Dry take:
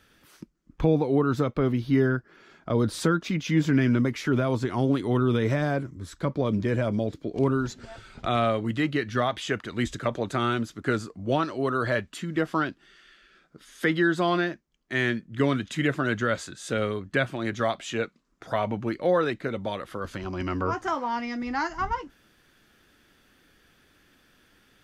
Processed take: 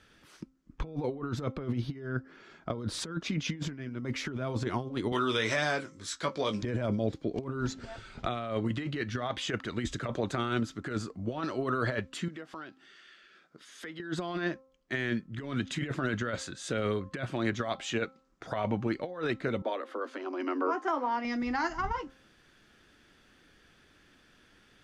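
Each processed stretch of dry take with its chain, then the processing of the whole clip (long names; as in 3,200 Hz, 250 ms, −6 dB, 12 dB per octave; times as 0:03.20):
0:05.12–0:06.63: low-pass filter 7,800 Hz + spectral tilt +4.5 dB per octave + double-tracking delay 19 ms −7 dB
0:12.28–0:14.00: high-pass filter 290 Hz 6 dB per octave + downward compressor 3 to 1, threshold −44 dBFS
0:19.62–0:21.25: Butterworth high-pass 240 Hz 96 dB per octave + high-shelf EQ 2,600 Hz −10 dB
whole clip: compressor whose output falls as the input rises −27 dBFS, ratio −0.5; low-pass filter 8,300 Hz 12 dB per octave; hum removal 263.9 Hz, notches 5; level −3.5 dB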